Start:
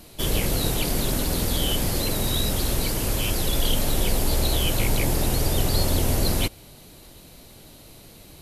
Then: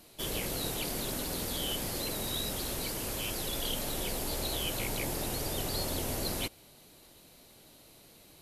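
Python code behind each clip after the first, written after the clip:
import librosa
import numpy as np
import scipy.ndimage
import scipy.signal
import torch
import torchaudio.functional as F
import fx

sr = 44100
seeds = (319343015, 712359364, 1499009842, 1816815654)

y = fx.low_shelf(x, sr, hz=150.0, db=-10.5)
y = F.gain(torch.from_numpy(y), -8.0).numpy()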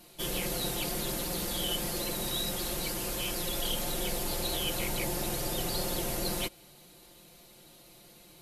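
y = x + 0.68 * np.pad(x, (int(5.7 * sr / 1000.0), 0))[:len(x)]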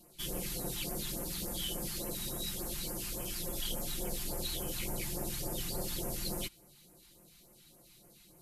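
y = fx.phaser_stages(x, sr, stages=2, low_hz=490.0, high_hz=3700.0, hz=3.5, feedback_pct=20)
y = F.gain(torch.from_numpy(y), -4.0).numpy()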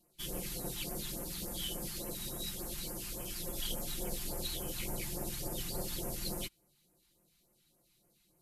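y = fx.upward_expand(x, sr, threshold_db=-57.0, expansion=1.5)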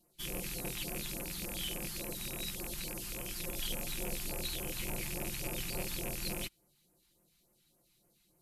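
y = fx.rattle_buzz(x, sr, strikes_db=-44.0, level_db=-32.0)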